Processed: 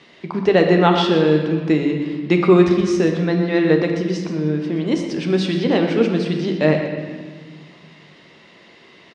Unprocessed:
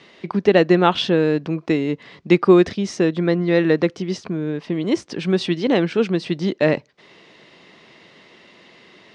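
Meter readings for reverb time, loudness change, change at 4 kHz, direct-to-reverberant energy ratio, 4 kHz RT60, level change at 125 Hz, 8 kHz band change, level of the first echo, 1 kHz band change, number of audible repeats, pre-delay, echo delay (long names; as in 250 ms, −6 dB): 1.5 s, +1.5 dB, +0.5 dB, 2.5 dB, 1.2 s, +3.0 dB, can't be measured, −11.5 dB, +1.5 dB, 1, 13 ms, 123 ms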